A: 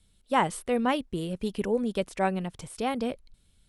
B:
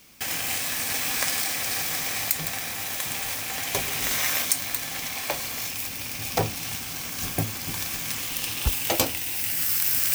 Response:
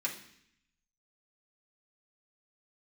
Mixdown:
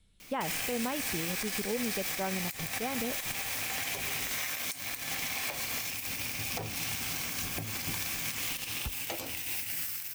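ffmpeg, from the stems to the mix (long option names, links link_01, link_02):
-filter_complex "[0:a]highshelf=frequency=5000:gain=-5.5,volume=-1.5dB[link_01];[1:a]acompressor=threshold=-30dB:ratio=10,adelay=200,volume=1dB[link_02];[link_01][link_02]amix=inputs=2:normalize=0,equalizer=frequency=2300:width=2.3:gain=3.5,alimiter=limit=-23dB:level=0:latency=1:release=96"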